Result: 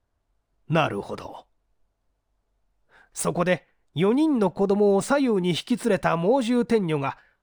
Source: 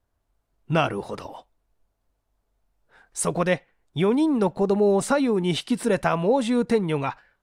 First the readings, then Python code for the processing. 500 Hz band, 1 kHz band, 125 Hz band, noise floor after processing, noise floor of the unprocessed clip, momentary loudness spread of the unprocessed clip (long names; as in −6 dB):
0.0 dB, 0.0 dB, 0.0 dB, −75 dBFS, −75 dBFS, 12 LU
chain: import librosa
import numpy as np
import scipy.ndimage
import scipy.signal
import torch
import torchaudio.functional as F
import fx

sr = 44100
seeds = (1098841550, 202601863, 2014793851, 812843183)

y = scipy.signal.medfilt(x, 3)